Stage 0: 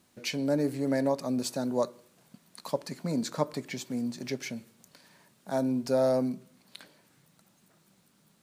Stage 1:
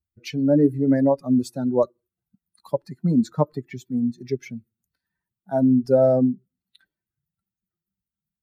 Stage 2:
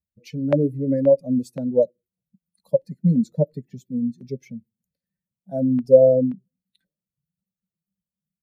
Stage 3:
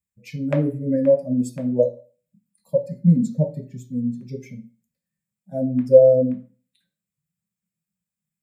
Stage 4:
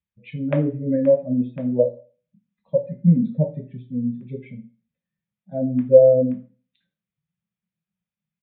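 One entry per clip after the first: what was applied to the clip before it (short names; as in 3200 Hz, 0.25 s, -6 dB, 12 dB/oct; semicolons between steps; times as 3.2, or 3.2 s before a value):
per-bin expansion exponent 2; tilt shelf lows +8.5 dB, about 1100 Hz; gain +6.5 dB
EQ curve 110 Hz 0 dB, 180 Hz +11 dB, 370 Hz -5 dB, 530 Hz +14 dB, 770 Hz -6 dB, 1200 Hz -18 dB, 2100 Hz -4 dB, 3400 Hz -5 dB, 7200 Hz -1 dB; LFO notch saw down 1.9 Hz 530–2400 Hz; gain -5.5 dB
reverb RT60 0.40 s, pre-delay 3 ms, DRR 2.5 dB; gain +1 dB
downsampling 8000 Hz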